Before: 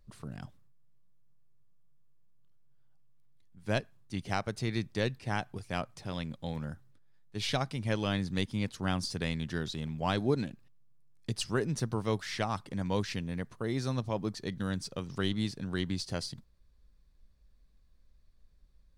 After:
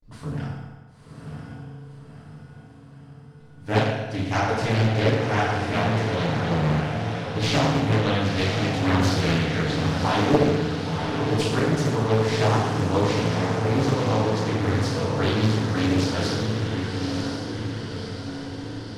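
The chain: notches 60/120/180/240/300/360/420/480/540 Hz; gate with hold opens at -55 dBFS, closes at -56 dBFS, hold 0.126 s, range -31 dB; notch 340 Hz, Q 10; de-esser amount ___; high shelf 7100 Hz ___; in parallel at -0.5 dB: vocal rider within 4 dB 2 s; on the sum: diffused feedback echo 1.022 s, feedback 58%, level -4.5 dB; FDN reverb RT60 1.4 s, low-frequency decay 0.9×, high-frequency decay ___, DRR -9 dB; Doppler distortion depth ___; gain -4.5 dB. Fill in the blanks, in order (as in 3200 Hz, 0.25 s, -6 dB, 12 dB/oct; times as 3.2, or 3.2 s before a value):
35%, -9 dB, 0.75×, 0.71 ms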